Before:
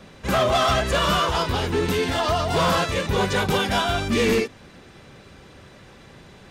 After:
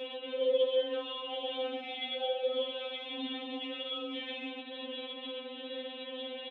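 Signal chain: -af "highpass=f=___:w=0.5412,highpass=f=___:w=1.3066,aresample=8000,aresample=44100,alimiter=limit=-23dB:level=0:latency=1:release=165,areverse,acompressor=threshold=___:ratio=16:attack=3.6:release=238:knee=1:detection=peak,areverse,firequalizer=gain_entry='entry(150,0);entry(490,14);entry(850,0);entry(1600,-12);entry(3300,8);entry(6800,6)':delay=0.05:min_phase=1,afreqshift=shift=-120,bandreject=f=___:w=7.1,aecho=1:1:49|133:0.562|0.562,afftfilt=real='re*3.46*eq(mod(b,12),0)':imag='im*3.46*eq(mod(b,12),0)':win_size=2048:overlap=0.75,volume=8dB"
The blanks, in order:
580, 580, -43dB, 1100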